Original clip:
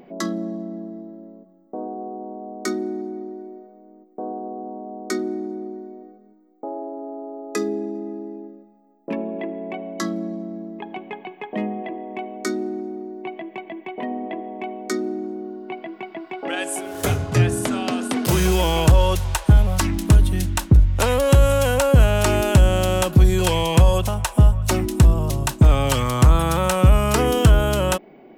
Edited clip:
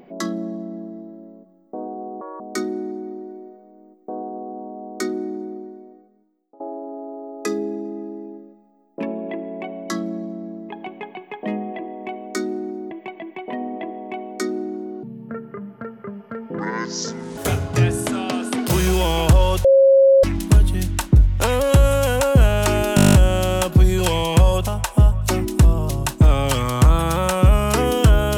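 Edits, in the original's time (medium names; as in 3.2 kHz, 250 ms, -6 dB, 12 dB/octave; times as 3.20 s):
2.21–2.50 s: speed 152%
5.51–6.70 s: fade out, to -22 dB
13.01–13.41 s: delete
15.53–16.96 s: speed 61%
19.23–19.82 s: bleep 542 Hz -8.5 dBFS
22.54 s: stutter 0.02 s, 10 plays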